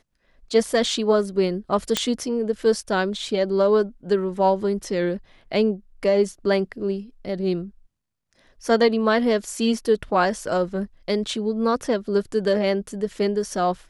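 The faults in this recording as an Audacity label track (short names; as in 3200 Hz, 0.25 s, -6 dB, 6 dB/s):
1.970000	1.970000	pop -5 dBFS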